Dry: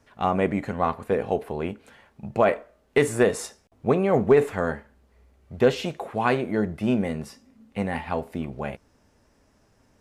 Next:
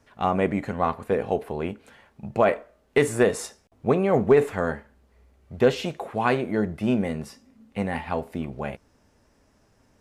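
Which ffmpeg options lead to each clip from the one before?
-af anull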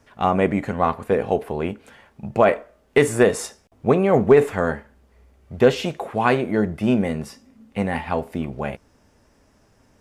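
-af "bandreject=f=4.1k:w=25,volume=4dB"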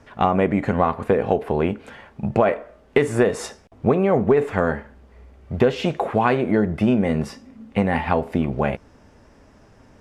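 -af "aemphasis=mode=reproduction:type=50kf,acompressor=threshold=-23dB:ratio=4,volume=7.5dB"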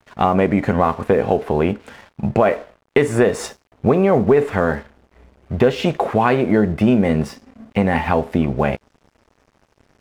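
-filter_complex "[0:a]asplit=2[a][b];[b]alimiter=limit=-10.5dB:level=0:latency=1,volume=-1.5dB[c];[a][c]amix=inputs=2:normalize=0,aeval=exprs='sgn(val(0))*max(abs(val(0))-0.0075,0)':c=same,volume=-1dB"

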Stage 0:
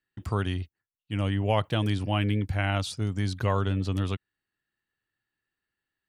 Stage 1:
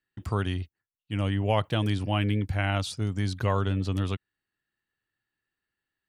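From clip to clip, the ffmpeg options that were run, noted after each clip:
-af anull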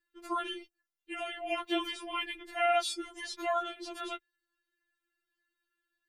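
-af "afftfilt=real='re*4*eq(mod(b,16),0)':imag='im*4*eq(mod(b,16),0)':win_size=2048:overlap=0.75,volume=2dB"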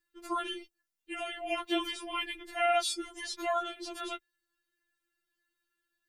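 -af "bass=f=250:g=4,treble=f=4k:g=4"

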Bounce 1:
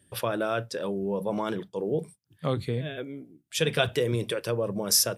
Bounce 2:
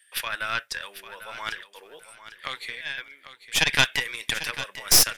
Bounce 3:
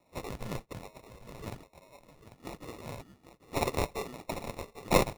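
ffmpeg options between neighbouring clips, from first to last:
-af "highpass=f=1.9k:t=q:w=2.6,aeval=exprs='0.398*(cos(1*acos(clip(val(0)/0.398,-1,1)))-cos(1*PI/2))+0.1*(cos(4*acos(clip(val(0)/0.398,-1,1)))-cos(4*PI/2))':c=same,aecho=1:1:796|1592|2388:0.224|0.056|0.014,volume=4.5dB"
-af "afftfilt=real='real(if(between(b,1,1008),(2*floor((b-1)/48)+1)*48-b,b),0)':imag='imag(if(between(b,1,1008),(2*floor((b-1)/48)+1)*48-b,b),0)*if(between(b,1,1008),-1,1)':win_size=2048:overlap=0.75,acrusher=samples=28:mix=1:aa=0.000001,volume=-8.5dB"

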